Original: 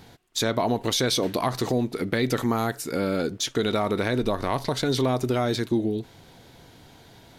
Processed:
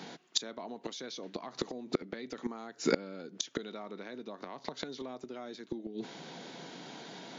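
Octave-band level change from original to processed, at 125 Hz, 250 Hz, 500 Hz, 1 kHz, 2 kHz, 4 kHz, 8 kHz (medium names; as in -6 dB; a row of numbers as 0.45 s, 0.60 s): -22.0 dB, -14.0 dB, -13.5 dB, -16.0 dB, -13.0 dB, -11.0 dB, -10.0 dB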